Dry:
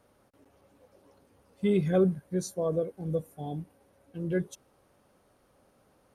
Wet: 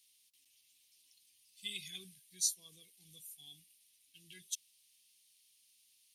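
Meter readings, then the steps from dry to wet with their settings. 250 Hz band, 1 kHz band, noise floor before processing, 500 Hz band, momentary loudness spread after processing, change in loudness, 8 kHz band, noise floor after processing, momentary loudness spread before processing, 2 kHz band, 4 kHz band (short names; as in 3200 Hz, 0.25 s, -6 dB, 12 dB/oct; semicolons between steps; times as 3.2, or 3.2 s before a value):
-33.0 dB, under -35 dB, -67 dBFS, -39.5 dB, 23 LU, -10.0 dB, +8.5 dB, -71 dBFS, 15 LU, -8.5 dB, +7.5 dB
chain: inverse Chebyshev high-pass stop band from 1500 Hz, stop band 40 dB; gain +8.5 dB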